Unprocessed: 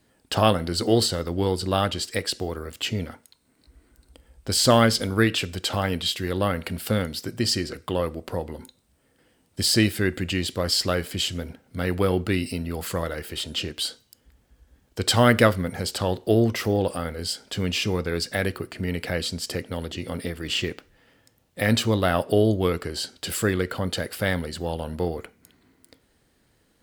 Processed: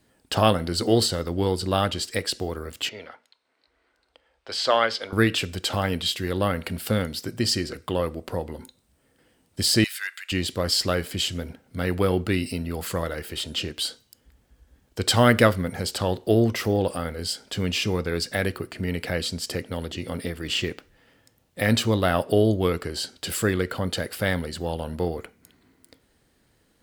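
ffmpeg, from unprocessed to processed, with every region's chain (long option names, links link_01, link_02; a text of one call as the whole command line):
ffmpeg -i in.wav -filter_complex "[0:a]asettb=1/sr,asplit=3[link_01][link_02][link_03];[link_01]atrim=end=2.894[link_04];[link_02]atrim=start=2.89:end=5.13,asetpts=PTS-STARTPTS,afade=type=in:duration=0.004:curve=qsin,afade=type=out:start_time=2.236:duration=0.004:curve=qsin,acrossover=split=450 4900:gain=0.0708 1 0.0708[link_05][link_06][link_07];[link_05][link_06][link_07]amix=inputs=3:normalize=0,bandreject=frequency=60:width_type=h:width=6,bandreject=frequency=120:width_type=h:width=6,bandreject=frequency=180:width_type=h:width=6,bandreject=frequency=240:width_type=h:width=6,bandreject=frequency=300:width_type=h:width=6[link_08];[link_03]atrim=start=5.126[link_09];[link_04][link_08]acrossfade=duration=0.004:curve1=hsin:curve2=qsin[link_10];[link_10][link_09]acrossfade=duration=0.004:curve1=qsin:curve2=hsin,asettb=1/sr,asplit=3[link_11][link_12][link_13];[link_11]atrim=end=9.844[link_14];[link_12]atrim=start=9.84:end=10.32,asetpts=PTS-STARTPTS,afade=type=in:duration=0.004:curve=qsin,afade=type=out:start_time=0.476:duration=0.004:curve=qsin,highpass=frequency=1300:width=0.5412,highpass=frequency=1300:width=1.3066,volume=21.5dB,asoftclip=hard,volume=-21.5dB[link_15];[link_13]atrim=start=10.316[link_16];[link_14][link_15]acrossfade=duration=0.004:curve1=hsin:curve2=qsin[link_17];[link_17][link_16]acrossfade=duration=0.004:curve1=qsin:curve2=hsin" out.wav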